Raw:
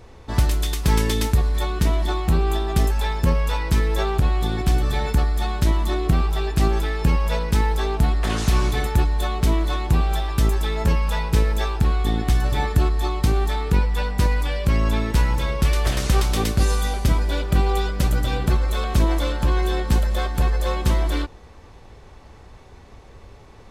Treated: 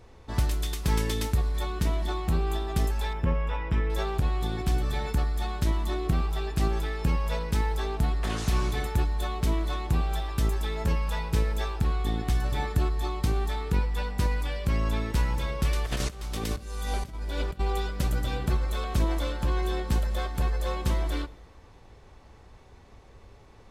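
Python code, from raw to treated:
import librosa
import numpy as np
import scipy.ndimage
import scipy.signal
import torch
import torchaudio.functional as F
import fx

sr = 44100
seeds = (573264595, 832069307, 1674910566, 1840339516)

y = fx.savgol(x, sr, points=25, at=(3.13, 3.9))
y = fx.over_compress(y, sr, threshold_db=-23.0, ratio=-0.5, at=(15.85, 17.59), fade=0.02)
y = fx.rev_plate(y, sr, seeds[0], rt60_s=1.6, hf_ratio=0.8, predelay_ms=0, drr_db=19.5)
y = y * 10.0 ** (-7.0 / 20.0)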